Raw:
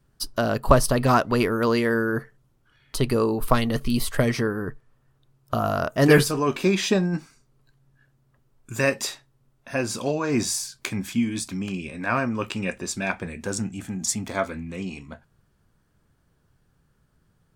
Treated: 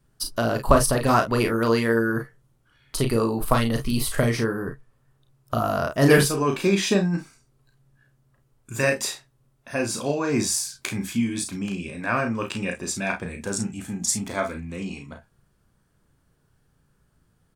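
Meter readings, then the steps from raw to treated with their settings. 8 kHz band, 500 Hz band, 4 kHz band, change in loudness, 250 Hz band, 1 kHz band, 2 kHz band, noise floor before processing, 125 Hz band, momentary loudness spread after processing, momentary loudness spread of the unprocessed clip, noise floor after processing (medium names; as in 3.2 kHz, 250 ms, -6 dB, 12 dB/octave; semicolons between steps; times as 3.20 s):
+2.5 dB, 0.0 dB, +0.5 dB, +0.5 dB, 0.0 dB, 0.0 dB, +0.5 dB, -66 dBFS, +0.5 dB, 11 LU, 12 LU, -66 dBFS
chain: peaking EQ 9.6 kHz +4 dB 0.76 oct; on a send: early reflections 35 ms -6 dB, 50 ms -12.5 dB; on the sum: trim -1 dB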